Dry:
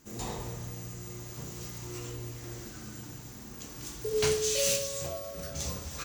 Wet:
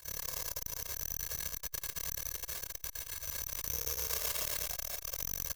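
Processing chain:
high-pass filter 470 Hz 12 dB per octave
high-shelf EQ 9,500 Hz +8 dB
comb filter 2 ms, depth 74%
downward compressor, threshold −32 dBFS, peak gain reduction 12 dB
gain into a clipping stage and back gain 34 dB
amplitude modulation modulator 32 Hz, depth 90%
echo machine with several playback heads 60 ms, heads all three, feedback 74%, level −9.5 dB
on a send at −9.5 dB: convolution reverb RT60 0.25 s, pre-delay 145 ms
on the sum: bad sample-rate conversion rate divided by 8×, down none, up zero stuff
wrong playback speed 44.1 kHz file played as 48 kHz
saturating transformer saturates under 1,400 Hz
level −3 dB

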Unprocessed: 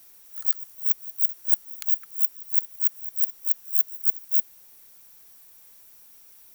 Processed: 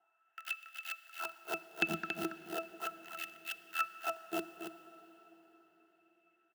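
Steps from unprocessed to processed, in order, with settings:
adaptive Wiener filter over 9 samples
dynamic equaliser 3,100 Hz, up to +7 dB, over −58 dBFS, Q 0.77
leveller curve on the samples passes 5
in parallel at −0.5 dB: brickwall limiter −11 dBFS, peak gain reduction 7 dB
on the sum: resonances in every octave E, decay 0.12 s
auto-filter high-pass sine 0.37 Hz 230–2,400 Hz
single-tap delay 279 ms −7 dB
on a send at −13 dB: convolution reverb RT60 4.6 s, pre-delay 25 ms
on the sum: level +11 dB

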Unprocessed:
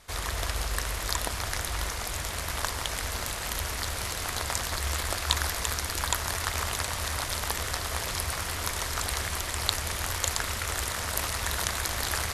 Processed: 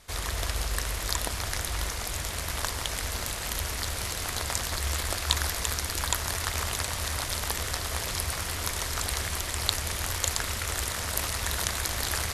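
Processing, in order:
parametric band 1,100 Hz −3 dB 2 octaves
level +1 dB

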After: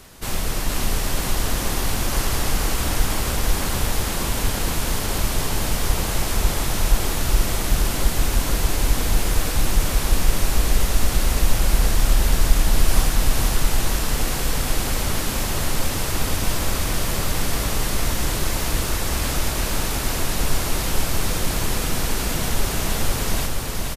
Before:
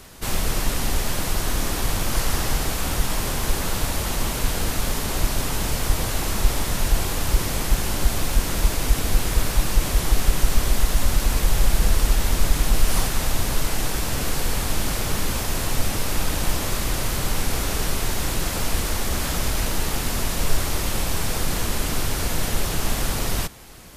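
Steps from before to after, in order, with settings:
repeating echo 472 ms, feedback 54%, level −3 dB
level −1 dB

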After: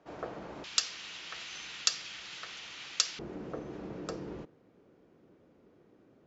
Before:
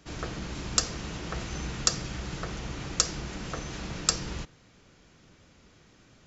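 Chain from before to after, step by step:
resonant band-pass 640 Hz, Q 1.4, from 0:00.64 3,200 Hz, from 0:03.19 390 Hz
level +2.5 dB

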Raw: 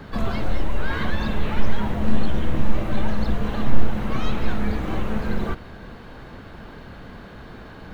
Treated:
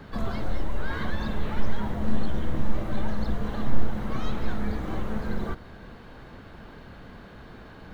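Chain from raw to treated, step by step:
dynamic equaliser 2,600 Hz, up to −6 dB, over −52 dBFS, Q 3.2
level −5 dB

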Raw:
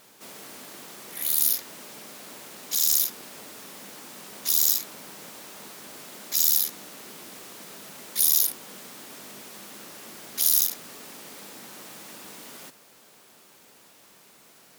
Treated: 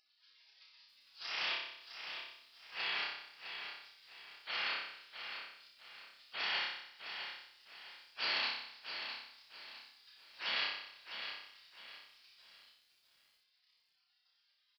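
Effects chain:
gate on every frequency bin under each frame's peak −25 dB weak
high-pass filter 120 Hz 12 dB per octave
spectral tilt +4.5 dB per octave
upward compression, threshold −60 dBFS
on a send: flutter between parallel walls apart 5.2 metres, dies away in 0.78 s
on the sum: downsampling to 11,025 Hz
feedback echo at a low word length 658 ms, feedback 35%, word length 12 bits, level −8 dB
level +4 dB

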